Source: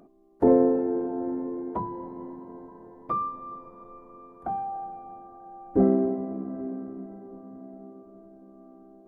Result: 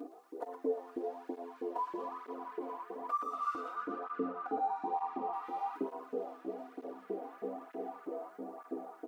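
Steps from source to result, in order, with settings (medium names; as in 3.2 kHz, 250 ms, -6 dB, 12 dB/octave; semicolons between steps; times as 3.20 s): companding laws mixed up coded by mu; compression 6:1, threshold -38 dBFS, peak gain reduction 21.5 dB; 3.75–5.33 s: tilt EQ -4 dB/octave; frequency-shifting echo 118 ms, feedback 57%, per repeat +84 Hz, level -7 dB; LFO high-pass saw up 3.1 Hz 340–1700 Hz; peaking EQ 310 Hz +7.5 dB 1.2 oct; band-stop 520 Hz, Q 12; comb 4.1 ms, depth 66%; cancelling through-zero flanger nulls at 1.1 Hz, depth 5.6 ms; trim -1.5 dB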